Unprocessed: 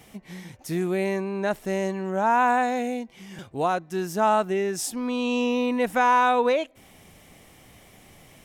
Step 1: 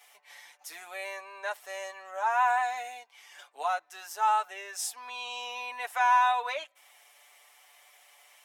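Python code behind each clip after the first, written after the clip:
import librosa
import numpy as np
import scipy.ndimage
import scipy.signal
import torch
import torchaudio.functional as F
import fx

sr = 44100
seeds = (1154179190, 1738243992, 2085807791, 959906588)

y = scipy.signal.sosfilt(scipy.signal.butter(4, 740.0, 'highpass', fs=sr, output='sos'), x)
y = y + 0.76 * np.pad(y, (int(6.9 * sr / 1000.0), 0))[:len(y)]
y = F.gain(torch.from_numpy(y), -5.5).numpy()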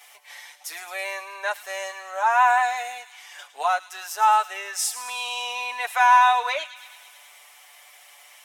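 y = fx.low_shelf(x, sr, hz=300.0, db=-12.0)
y = fx.echo_wet_highpass(y, sr, ms=108, feedback_pct=70, hz=2600.0, wet_db=-12)
y = F.gain(torch.from_numpy(y), 8.5).numpy()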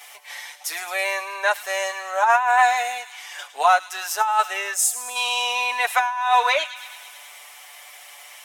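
y = fx.spec_box(x, sr, start_s=4.74, length_s=0.42, low_hz=750.0, high_hz=6200.0, gain_db=-10)
y = fx.over_compress(y, sr, threshold_db=-20.0, ratio=-0.5)
y = F.gain(torch.from_numpy(y), 4.0).numpy()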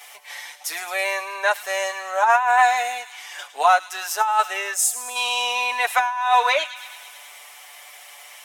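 y = fx.low_shelf(x, sr, hz=290.0, db=5.0)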